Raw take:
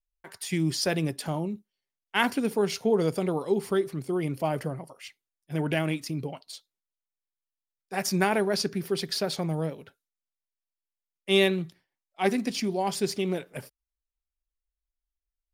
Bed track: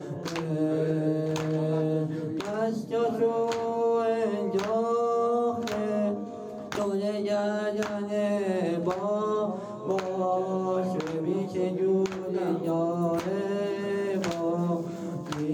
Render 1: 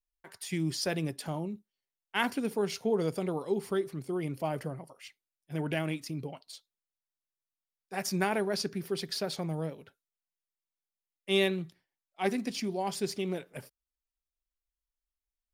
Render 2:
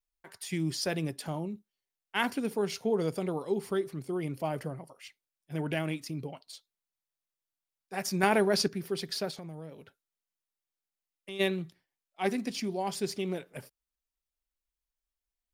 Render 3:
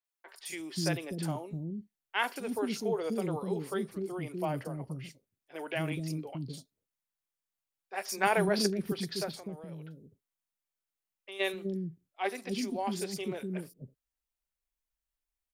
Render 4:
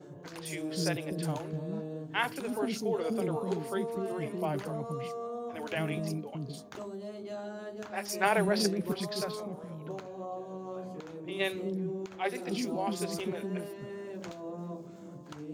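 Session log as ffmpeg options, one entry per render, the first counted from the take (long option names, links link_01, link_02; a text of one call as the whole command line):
ffmpeg -i in.wav -af "volume=-5dB" out.wav
ffmpeg -i in.wav -filter_complex "[0:a]asettb=1/sr,asplit=3[link_01][link_02][link_03];[link_01]atrim=end=8.234[link_04];[link_02]atrim=start=8.23:end=8.68,asetpts=PTS-STARTPTS,afade=type=in:duration=0.004:curve=qsin,afade=type=out:start_time=0.446:duration=0.004:curve=qsin,acontrast=30[link_05];[link_03]atrim=start=8.676[link_06];[link_04][link_05]acrossfade=duration=0.004:curve1=hsin:curve2=qsin[link_07];[link_07][link_06]acrossfade=duration=0.004:curve1=qsin:curve2=hsin,asplit=3[link_08][link_09][link_10];[link_08]afade=type=out:start_time=9.3:duration=0.02[link_11];[link_09]acompressor=threshold=-41dB:ratio=3:attack=3.2:release=140:knee=1:detection=peak,afade=type=in:start_time=9.3:duration=0.02,afade=type=out:start_time=11.39:duration=0.02[link_12];[link_10]afade=type=in:start_time=11.39:duration=0.02[link_13];[link_11][link_12][link_13]amix=inputs=3:normalize=0" out.wav
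ffmpeg -i in.wav -filter_complex "[0:a]acrossover=split=360|4600[link_01][link_02][link_03];[link_03]adelay=40[link_04];[link_01]adelay=250[link_05];[link_05][link_02][link_04]amix=inputs=3:normalize=0" out.wav
ffmpeg -i in.wav -i bed.wav -filter_complex "[1:a]volume=-13dB[link_01];[0:a][link_01]amix=inputs=2:normalize=0" out.wav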